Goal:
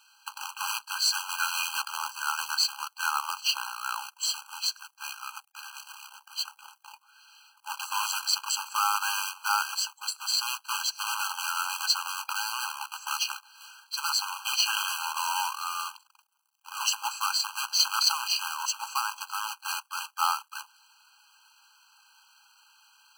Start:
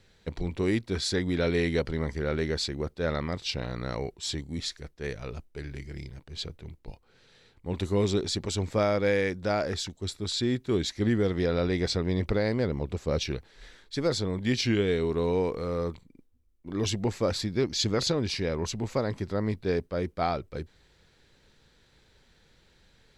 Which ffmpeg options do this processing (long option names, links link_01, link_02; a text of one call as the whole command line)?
ffmpeg -i in.wav -af "acrusher=bits=2:mode=log:mix=0:aa=0.000001,afftfilt=real='re*eq(mod(floor(b*sr/1024/810),2),1)':imag='im*eq(mod(floor(b*sr/1024/810),2),1)':win_size=1024:overlap=0.75,volume=8.5dB" out.wav